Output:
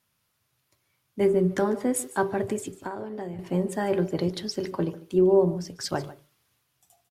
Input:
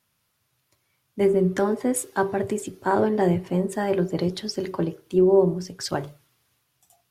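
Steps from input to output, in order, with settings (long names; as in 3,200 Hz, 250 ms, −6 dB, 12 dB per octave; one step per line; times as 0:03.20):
0:02.73–0:03.39: downward compressor 12 to 1, threshold −29 dBFS, peak gain reduction 14 dB
on a send: single-tap delay 147 ms −17 dB
on the sum: level −2 dB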